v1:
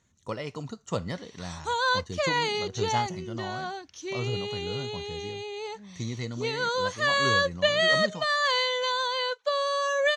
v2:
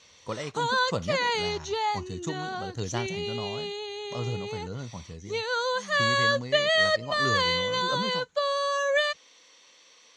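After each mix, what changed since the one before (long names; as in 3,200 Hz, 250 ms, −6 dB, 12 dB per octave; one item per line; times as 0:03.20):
background: entry −1.10 s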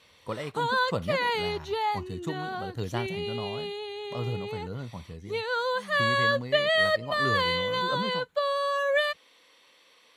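master: remove low-pass with resonance 6,400 Hz, resonance Q 5.8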